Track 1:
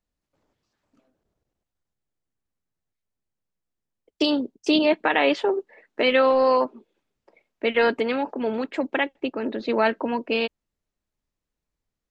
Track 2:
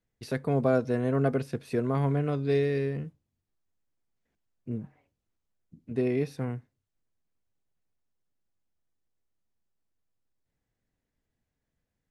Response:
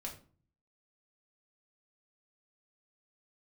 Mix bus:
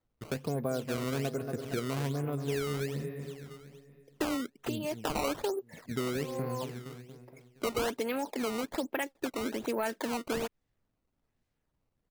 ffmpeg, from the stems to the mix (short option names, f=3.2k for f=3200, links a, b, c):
-filter_complex "[0:a]acontrast=72,volume=-7.5dB[a];[1:a]lowpass=4.6k,volume=0.5dB,asplit=3[b][c][d];[c]volume=-10.5dB[e];[d]apad=whole_len=533914[f];[a][f]sidechaincompress=threshold=-41dB:ratio=12:attack=23:release=431[g];[e]aecho=0:1:233|466|699|932|1165|1398|1631|1864:1|0.52|0.27|0.141|0.0731|0.038|0.0198|0.0103[h];[g][b][h]amix=inputs=3:normalize=0,acrusher=samples=15:mix=1:aa=0.000001:lfo=1:lforange=24:lforate=1.2,acompressor=threshold=-32dB:ratio=3"